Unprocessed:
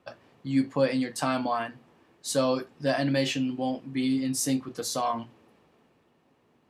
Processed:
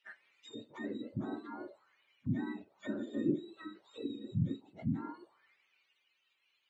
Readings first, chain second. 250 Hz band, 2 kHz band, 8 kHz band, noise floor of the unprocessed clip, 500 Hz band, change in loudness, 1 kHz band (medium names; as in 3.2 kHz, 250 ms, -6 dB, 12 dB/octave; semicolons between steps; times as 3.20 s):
-10.0 dB, -15.0 dB, under -35 dB, -66 dBFS, -16.0 dB, -11.5 dB, -20.5 dB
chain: spectrum inverted on a logarithmic axis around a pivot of 1 kHz; peaking EQ 230 Hz -4.5 dB 0.26 oct; auto-wah 280–2800 Hz, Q 3.4, down, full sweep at -27.5 dBFS; trim +2.5 dB